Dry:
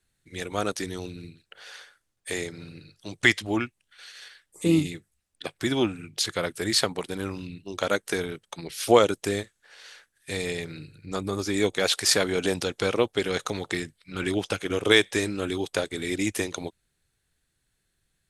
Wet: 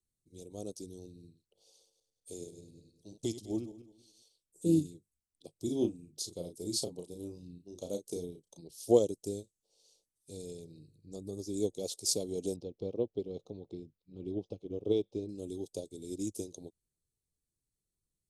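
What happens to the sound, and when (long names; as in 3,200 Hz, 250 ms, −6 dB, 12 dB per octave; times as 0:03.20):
0:01.70–0:04.23: feedback delay that plays each chunk backwards 101 ms, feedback 48%, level −9 dB
0:05.64–0:08.62: double-tracking delay 34 ms −5.5 dB
0:12.56–0:15.29: high-frequency loss of the air 320 metres
whole clip: Chebyshev band-stop filter 450–5,900 Hz, order 2; expander for the loud parts 1.5 to 1, over −33 dBFS; level −3.5 dB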